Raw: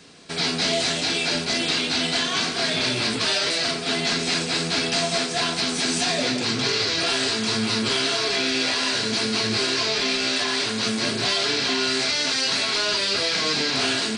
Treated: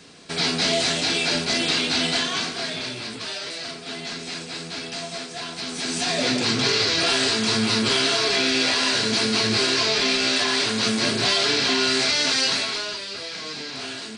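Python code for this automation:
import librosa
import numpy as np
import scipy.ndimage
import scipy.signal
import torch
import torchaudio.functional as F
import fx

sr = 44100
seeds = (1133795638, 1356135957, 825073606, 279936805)

y = fx.gain(x, sr, db=fx.line((2.1, 1.0), (3.02, -9.0), (5.48, -9.0), (6.33, 2.0), (12.45, 2.0), (13.04, -10.0)))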